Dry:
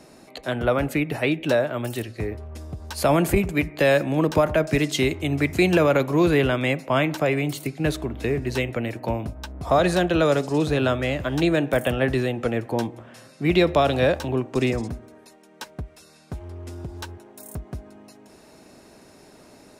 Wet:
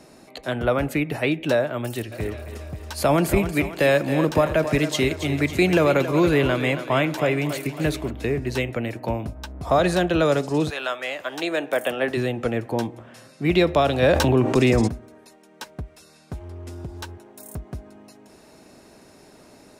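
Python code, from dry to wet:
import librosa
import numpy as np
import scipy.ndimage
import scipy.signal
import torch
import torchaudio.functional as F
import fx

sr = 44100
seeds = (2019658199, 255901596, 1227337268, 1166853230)

y = fx.echo_thinned(x, sr, ms=275, feedback_pct=57, hz=320.0, wet_db=-10.0, at=(2.11, 8.09), fade=0.02)
y = fx.highpass(y, sr, hz=fx.line((10.69, 930.0), (12.16, 280.0)), slope=12, at=(10.69, 12.16), fade=0.02)
y = fx.env_flatten(y, sr, amount_pct=70, at=(14.02, 14.87), fade=0.02)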